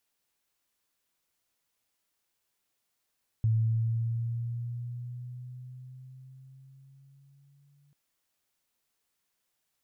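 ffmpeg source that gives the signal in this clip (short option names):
-f lavfi -i "aevalsrc='pow(10,(-21.5-40*t/4.49)/20)*sin(2*PI*111*4.49/(4.5*log(2)/12)*(exp(4.5*log(2)/12*t/4.49)-1))':d=4.49:s=44100"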